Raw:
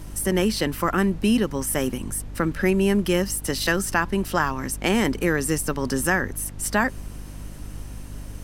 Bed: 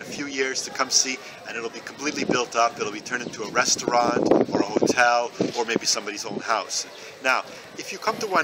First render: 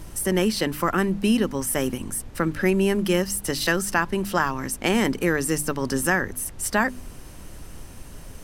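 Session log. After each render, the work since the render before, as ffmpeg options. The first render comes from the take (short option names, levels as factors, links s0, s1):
-af "bandreject=f=50:t=h:w=4,bandreject=f=100:t=h:w=4,bandreject=f=150:t=h:w=4,bandreject=f=200:t=h:w=4,bandreject=f=250:t=h:w=4,bandreject=f=300:t=h:w=4"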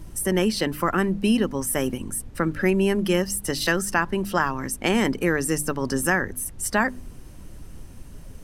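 -af "afftdn=nr=7:nf=-41"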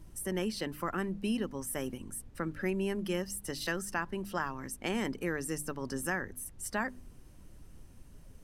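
-af "volume=0.251"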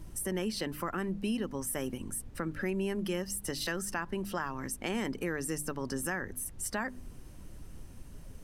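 -filter_complex "[0:a]asplit=2[s0][s1];[s1]alimiter=level_in=1.68:limit=0.0631:level=0:latency=1:release=114,volume=0.596,volume=0.891[s2];[s0][s2]amix=inputs=2:normalize=0,acompressor=threshold=0.0158:ratio=1.5"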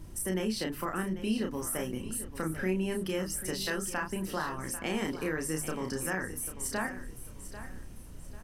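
-filter_complex "[0:a]asplit=2[s0][s1];[s1]adelay=32,volume=0.631[s2];[s0][s2]amix=inputs=2:normalize=0,aecho=1:1:793|1586|2379:0.224|0.0716|0.0229"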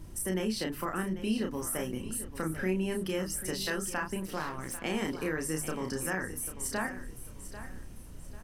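-filter_complex "[0:a]asettb=1/sr,asplit=3[s0][s1][s2];[s0]atrim=end=4.204[s3];[s1]atrim=start=4.2:end=4.84,asetpts=PTS-STARTPTS,afade=t=in:d=0.004:c=qsin,afade=t=out:st=0.636:d=0.004:c=qsin,aeval=exprs='if(lt(val(0),0),0.447*val(0),val(0))':c=same[s4];[s2]atrim=start=4.836[s5];[s3][s4]acrossfade=d=0.004:c1=hsin:c2=qsin[s6];[s6][s5]acrossfade=d=0.004:c1=qsin:c2=hsin"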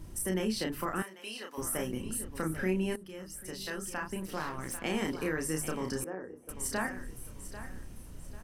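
-filter_complex "[0:a]asettb=1/sr,asplit=3[s0][s1][s2];[s0]atrim=end=1.024[s3];[s1]atrim=start=1.02:end=1.58,asetpts=PTS-STARTPTS,afade=t=in:d=0.004:c=qsin,afade=t=out:st=0.556:d=0.004:c=qsin,highpass=770[s4];[s2]atrim=start=1.576[s5];[s3][s4]acrossfade=d=0.004:c1=hsin:c2=qsin[s6];[s6][s5]acrossfade=d=0.004:c1=qsin:c2=hsin,asettb=1/sr,asplit=3[s7][s8][s9];[s7]atrim=end=6.044[s10];[s8]atrim=start=6.04:end=6.49,asetpts=PTS-STARTPTS,afade=t=in:d=0.004:c=qsin,afade=t=out:st=0.446:d=0.004:c=qsin,bandpass=f=450:t=q:w=1.7[s11];[s9]atrim=start=6.486[s12];[s10][s11]acrossfade=d=0.004:c1=hsin:c2=qsin[s13];[s13][s12]acrossfade=d=0.004:c1=qsin:c2=hsin,asplit=2[s14][s15];[s14]atrim=end=2.96,asetpts=PTS-STARTPTS,afade=t=out:st=2.956:d=0.004:c=hsin:silence=0.149624[s16];[s15]atrim=start=2.96,asetpts=PTS-STARTPTS,afade=t=in:d=1.64:silence=0.149624[s17];[s16][s17]concat=n=2:v=0:a=1"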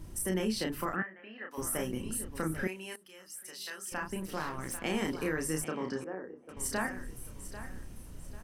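-filter_complex "[0:a]asplit=3[s0][s1][s2];[s0]afade=t=out:st=0.94:d=0.02[s3];[s1]highpass=110,equalizer=f=400:t=q:w=4:g=-6,equalizer=f=970:t=q:w=4:g=-8,equalizer=f=1800:t=q:w=4:g=9,lowpass=f=2000:w=0.5412,lowpass=f=2000:w=1.3066,afade=t=in:st=0.94:d=0.02,afade=t=out:st=1.5:d=0.02[s4];[s2]afade=t=in:st=1.5:d=0.02[s5];[s3][s4][s5]amix=inputs=3:normalize=0,asettb=1/sr,asplit=3[s6][s7][s8];[s6]atrim=end=2.674[s9];[s7]atrim=start=2.67:end=3.92,asetpts=PTS-STARTPTS,afade=t=in:d=0.004:c=qsin,afade=t=out:st=1.246:d=0.004:c=qsin,highpass=f=1500:p=1[s10];[s8]atrim=start=3.916[s11];[s9][s10]acrossfade=d=0.004:c1=hsin:c2=qsin[s12];[s12][s11]acrossfade=d=0.004:c1=qsin:c2=hsin,asettb=1/sr,asplit=3[s13][s14][s15];[s13]atrim=end=5.644[s16];[s14]atrim=start=5.64:end=6.57,asetpts=PTS-STARTPTS,afade=t=in:d=0.004:c=qsin,afade=t=out:st=0.926:d=0.004:c=qsin,highpass=160,lowpass=3700[s17];[s15]atrim=start=6.566[s18];[s16][s17]acrossfade=d=0.004:c1=hsin:c2=qsin[s19];[s19][s18]acrossfade=d=0.004:c1=qsin:c2=hsin"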